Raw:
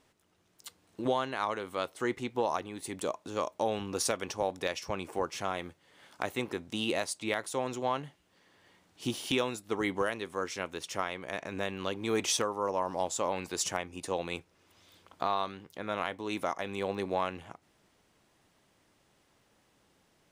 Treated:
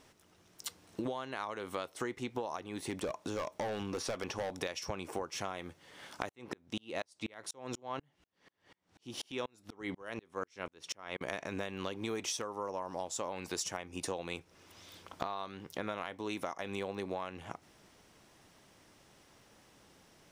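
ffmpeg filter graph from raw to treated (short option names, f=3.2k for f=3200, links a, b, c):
-filter_complex "[0:a]asettb=1/sr,asplit=3[a][b][c];[a]atrim=end=2.774[d];[b]atrim=start=2.77:end=4.53,asetpts=PTS-STARTPTS,afade=t=in:d=0.004:c=qsin,afade=t=out:st=1.756:d=0.004:c=qsin,acrossover=split=3600[e][f];[f]acompressor=threshold=-49dB:ratio=4:attack=1:release=60[g];[e][g]amix=inputs=2:normalize=0,volume=30.5dB,asoftclip=hard,volume=-30.5dB[h];[c]atrim=start=4.526[i];[d][h]acrossfade=d=0.004:c1=hsin:c2=qsin[j];[j][i]acrossfade=d=0.004:c1=qsin:c2=hsin,asettb=1/sr,asplit=3[k][l][m];[k]atrim=end=6.294[n];[l]atrim=start=6.29:end=11.21,asetpts=PTS-STARTPTS,afade=t=in:d=0.004:c=qsin,afade=t=out:st=4.916:d=0.004:c=qsin,highshelf=f=8.2k:g=-10,aeval=exprs='val(0)*pow(10,-39*if(lt(mod(-4.1*n/s,1),2*abs(-4.1)/1000),1-mod(-4.1*n/s,1)/(2*abs(-4.1)/1000),(mod(-4.1*n/s,1)-2*abs(-4.1)/1000)/(1-2*abs(-4.1)/1000))/20)':c=same[o];[m]atrim=start=11.206[p];[n][o]acrossfade=d=0.004:c1=hsin:c2=qsin[q];[q][p]acrossfade=d=0.004:c1=qsin:c2=hsin,equalizer=f=5.6k:w=6.6:g=5,acompressor=threshold=-40dB:ratio=12,volume=6dB"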